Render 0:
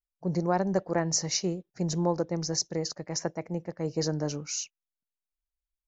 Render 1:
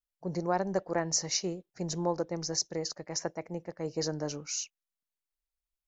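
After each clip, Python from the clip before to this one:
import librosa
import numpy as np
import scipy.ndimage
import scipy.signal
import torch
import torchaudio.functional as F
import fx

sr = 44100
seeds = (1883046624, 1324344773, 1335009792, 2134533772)

y = fx.peak_eq(x, sr, hz=150.0, db=-5.5, octaves=2.0)
y = F.gain(torch.from_numpy(y), -1.5).numpy()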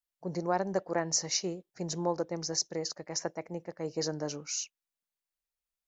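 y = fx.low_shelf(x, sr, hz=82.0, db=-10.0)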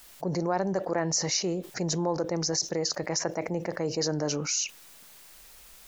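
y = fx.env_flatten(x, sr, amount_pct=70)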